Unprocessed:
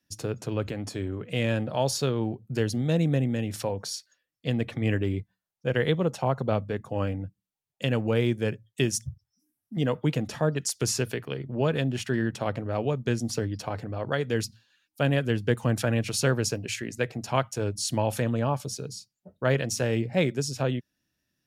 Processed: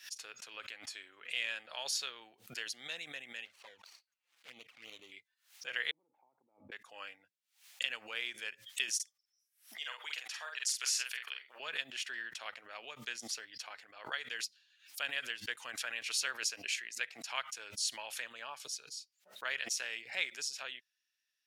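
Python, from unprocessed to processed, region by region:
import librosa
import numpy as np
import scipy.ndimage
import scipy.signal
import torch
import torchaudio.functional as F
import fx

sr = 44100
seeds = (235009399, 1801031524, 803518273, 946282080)

y = fx.chain(x, sr, fx.median_filter(points=25),
    fx.env_flanger(rest_ms=6.3, full_db=-23.0), at=(3.45, 5.12))
y = fx.chain(y, sr, fx.over_compress(threshold_db=-32.0, ratio=-1.0),
    fx.formant_cascade(vowel='u'), at=(5.91, 6.72))
y = fx.chain(y, sr, fx.highpass(hz=770.0, slope=12),
    fx.doubler(ms=47.0, db=-4.5), at=(8.95, 11.6))
y = scipy.signal.sosfilt(scipy.signal.cheby1(2, 1.0, 2200.0, 'highpass', fs=sr, output='sos'), y)
y = fx.high_shelf(y, sr, hz=8800.0, db=-9.0)
y = fx.pre_swell(y, sr, db_per_s=150.0)
y = y * 10.0 ** (-1.0 / 20.0)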